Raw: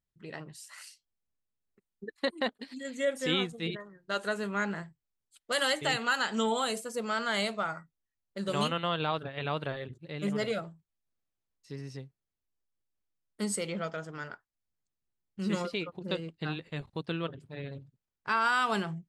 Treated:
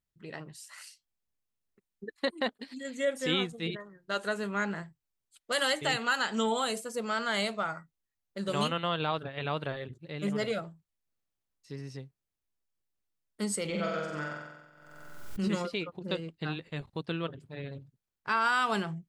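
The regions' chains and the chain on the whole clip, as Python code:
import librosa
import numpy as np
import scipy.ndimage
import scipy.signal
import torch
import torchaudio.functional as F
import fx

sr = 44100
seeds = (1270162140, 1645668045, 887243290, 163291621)

y = fx.chain(x, sr, fx.room_flutter(wall_m=7.9, rt60_s=1.1),
    fx.pre_swell(db_per_s=44.0), at=(13.65, 15.48))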